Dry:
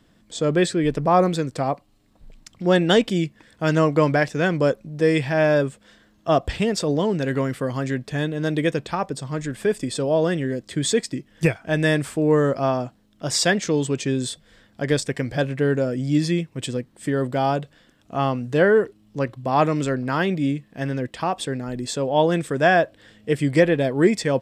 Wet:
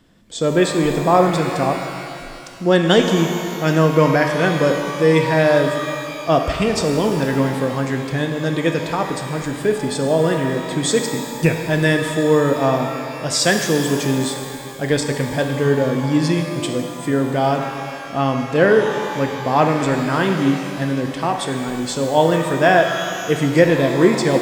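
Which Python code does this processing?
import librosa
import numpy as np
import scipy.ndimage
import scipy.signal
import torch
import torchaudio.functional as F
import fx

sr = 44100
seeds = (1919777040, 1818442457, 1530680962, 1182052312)

y = fx.rev_shimmer(x, sr, seeds[0], rt60_s=2.4, semitones=12, shimmer_db=-8, drr_db=4.0)
y = y * 10.0 ** (2.5 / 20.0)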